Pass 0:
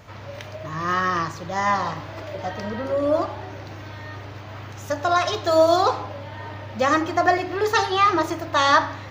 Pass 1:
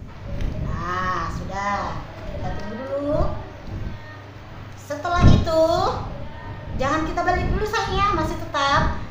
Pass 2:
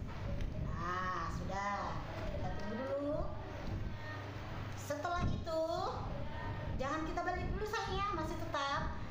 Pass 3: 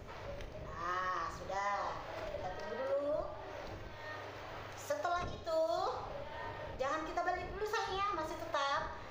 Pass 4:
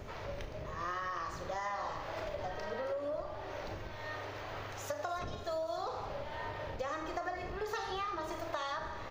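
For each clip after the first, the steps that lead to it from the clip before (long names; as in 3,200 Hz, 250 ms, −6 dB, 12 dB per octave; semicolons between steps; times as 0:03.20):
wind on the microphone 120 Hz −23 dBFS; four-comb reverb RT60 0.46 s, combs from 28 ms, DRR 6 dB; level −3.5 dB
downward compressor 4 to 1, threshold −31 dBFS, peak gain reduction 19.5 dB; level −5.5 dB
low shelf with overshoot 320 Hz −10 dB, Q 1.5; level +1 dB
downward compressor, threshold −38 dBFS, peak gain reduction 7.5 dB; repeating echo 290 ms, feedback 58%, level −17 dB; level +3.5 dB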